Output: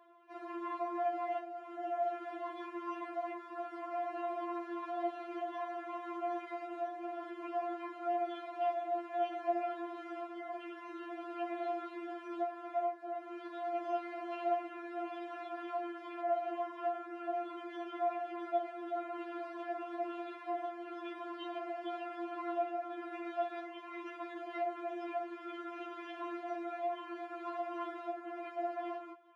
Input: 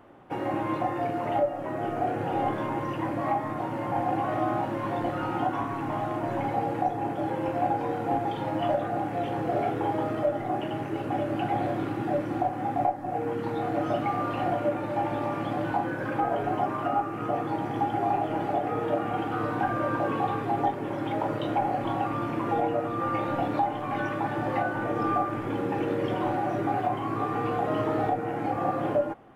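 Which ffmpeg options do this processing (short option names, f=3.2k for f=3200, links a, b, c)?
-af "highpass=590,lowpass=4.5k,afftfilt=real='re*4*eq(mod(b,16),0)':imag='im*4*eq(mod(b,16),0)':win_size=2048:overlap=0.75,volume=-5dB"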